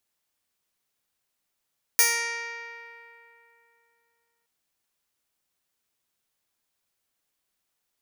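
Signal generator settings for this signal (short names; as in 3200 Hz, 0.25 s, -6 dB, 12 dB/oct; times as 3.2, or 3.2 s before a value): plucked string A#4, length 2.47 s, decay 3.02 s, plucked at 0.12, bright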